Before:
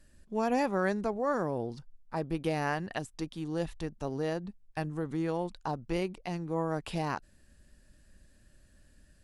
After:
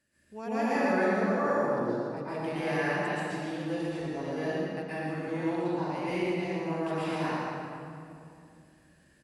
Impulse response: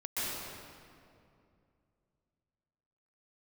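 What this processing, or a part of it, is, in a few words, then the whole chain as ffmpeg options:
PA in a hall: -filter_complex "[0:a]highpass=130,equalizer=f=2.1k:t=o:w=0.93:g=5.5,aecho=1:1:114:0.562[a];[1:a]atrim=start_sample=2205[b];[a][b]afir=irnorm=-1:irlink=0,volume=-5.5dB"

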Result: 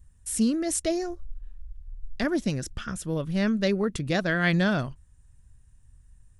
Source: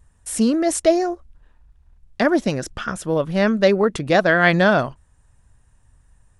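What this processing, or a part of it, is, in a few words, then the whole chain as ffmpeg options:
smiley-face EQ: -filter_complex "[0:a]asplit=3[a][b][c];[a]afade=t=out:st=1.01:d=0.02[d];[b]asubboost=boost=9:cutoff=53,afade=t=in:st=1.01:d=0.02,afade=t=out:st=2.23:d=0.02[e];[c]afade=t=in:st=2.23:d=0.02[f];[d][e][f]amix=inputs=3:normalize=0,lowshelf=f=170:g=7.5,equalizer=f=760:t=o:w=2:g=-8.5,highshelf=f=7.1k:g=5,volume=-6dB"

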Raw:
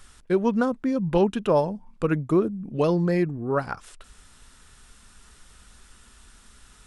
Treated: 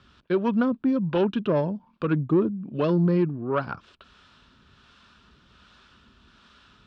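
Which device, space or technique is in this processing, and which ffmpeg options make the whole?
guitar amplifier with harmonic tremolo: -filter_complex "[0:a]acrossover=split=440[a][b];[a]aeval=exprs='val(0)*(1-0.5/2+0.5/2*cos(2*PI*1.3*n/s))':c=same[c];[b]aeval=exprs='val(0)*(1-0.5/2-0.5/2*cos(2*PI*1.3*n/s))':c=same[d];[c][d]amix=inputs=2:normalize=0,asoftclip=type=tanh:threshold=-17.5dB,highpass=98,equalizer=f=470:t=q:w=4:g=-5,equalizer=f=790:t=q:w=4:g=-7,equalizer=f=2k:t=q:w=4:g=-9,lowpass=f=4k:w=0.5412,lowpass=f=4k:w=1.3066,volume=5dB"

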